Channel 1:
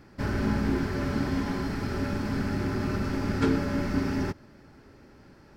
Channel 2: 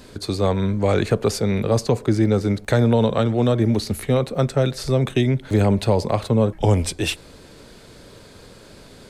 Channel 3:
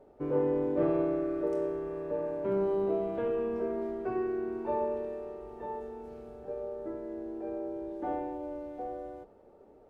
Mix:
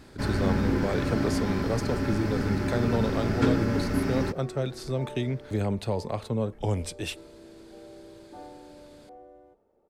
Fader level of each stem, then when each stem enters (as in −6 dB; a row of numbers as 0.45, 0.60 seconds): +0.5, −10.5, −10.5 decibels; 0.00, 0.00, 0.30 seconds